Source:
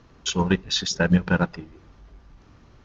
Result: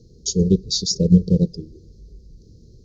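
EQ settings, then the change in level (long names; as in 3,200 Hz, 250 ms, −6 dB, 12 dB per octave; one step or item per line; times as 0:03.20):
Chebyshev band-stop filter 470–4,400 Hz, order 4
parametric band 270 Hz −10.5 dB 0.26 octaves
+6.5 dB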